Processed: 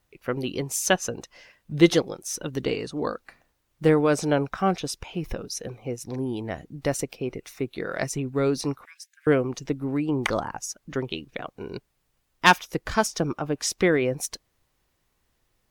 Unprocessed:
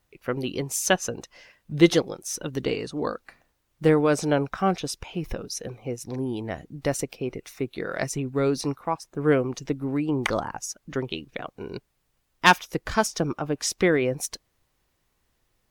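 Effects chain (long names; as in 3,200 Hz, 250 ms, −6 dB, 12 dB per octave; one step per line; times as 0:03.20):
0:08.85–0:09.27: Chebyshev high-pass filter 1,600 Hz, order 6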